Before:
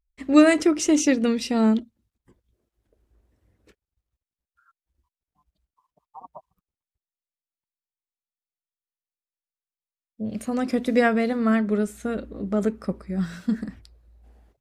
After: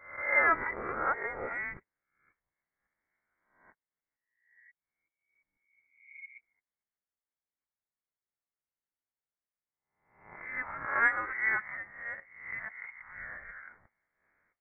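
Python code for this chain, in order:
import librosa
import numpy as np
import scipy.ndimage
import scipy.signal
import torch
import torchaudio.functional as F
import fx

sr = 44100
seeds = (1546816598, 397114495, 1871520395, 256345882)

y = fx.spec_swells(x, sr, rise_s=0.65)
y = scipy.signal.sosfilt(scipy.signal.cheby1(6, 1.0, 1100.0, 'highpass', fs=sr, output='sos'), y)
y = fx.freq_invert(y, sr, carrier_hz=3300)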